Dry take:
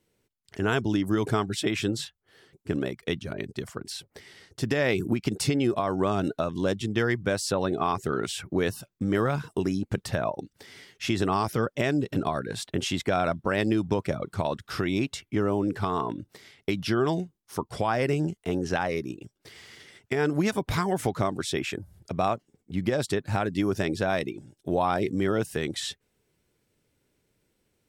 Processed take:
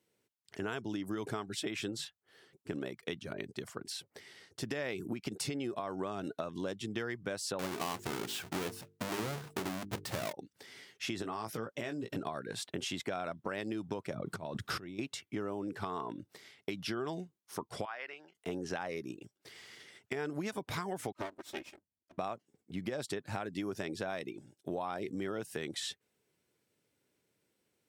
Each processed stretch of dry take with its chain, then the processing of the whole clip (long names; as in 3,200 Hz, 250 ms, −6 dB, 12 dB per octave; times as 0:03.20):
0:07.59–0:10.33: each half-wave held at its own peak + mains-hum notches 50/100/150/200/250/300/350/400/450 Hz
0:11.22–0:12.16: downward compressor 4 to 1, threshold −26 dBFS + double-tracking delay 18 ms −8 dB
0:14.14–0:14.99: low-shelf EQ 420 Hz +10 dB + compressor whose output falls as the input rises −32 dBFS
0:17.85–0:18.35: high-pass filter 1,300 Hz + high-frequency loss of the air 320 metres
0:21.12–0:22.18: lower of the sound and its delayed copy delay 3.2 ms + expander for the loud parts 2.5 to 1, over −47 dBFS
whole clip: high-pass filter 92 Hz; low-shelf EQ 180 Hz −7 dB; downward compressor 4 to 1, threshold −30 dBFS; level −4.5 dB